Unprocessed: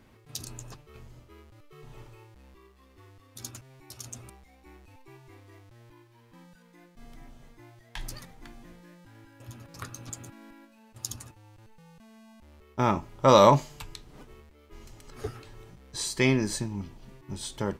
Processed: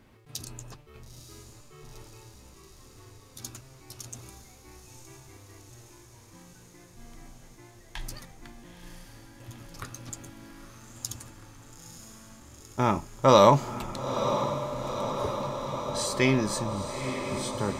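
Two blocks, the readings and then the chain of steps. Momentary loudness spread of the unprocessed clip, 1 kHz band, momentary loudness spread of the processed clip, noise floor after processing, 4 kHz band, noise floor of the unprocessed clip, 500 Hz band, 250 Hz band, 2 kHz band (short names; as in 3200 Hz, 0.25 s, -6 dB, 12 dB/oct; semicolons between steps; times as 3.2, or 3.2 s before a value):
24 LU, +1.0 dB, 23 LU, -53 dBFS, +1.0 dB, -58 dBFS, +1.0 dB, +1.0 dB, +0.5 dB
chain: diffused feedback echo 0.922 s, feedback 78%, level -9 dB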